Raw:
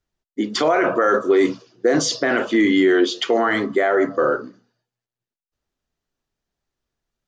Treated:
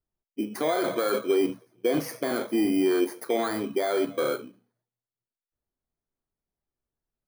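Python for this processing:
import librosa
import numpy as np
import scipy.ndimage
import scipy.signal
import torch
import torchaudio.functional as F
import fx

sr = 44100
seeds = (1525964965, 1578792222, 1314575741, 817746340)

y = fx.bit_reversed(x, sr, seeds[0], block=16)
y = fx.high_shelf(y, sr, hz=3600.0, db=-11.5)
y = y * librosa.db_to_amplitude(-7.0)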